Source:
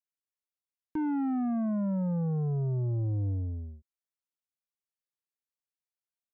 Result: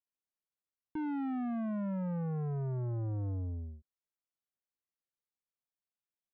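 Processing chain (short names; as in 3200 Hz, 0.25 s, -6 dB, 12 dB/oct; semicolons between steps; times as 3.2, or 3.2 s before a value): LPF 1200 Hz 6 dB/oct; soft clip -31.5 dBFS, distortion -19 dB; gain -1.5 dB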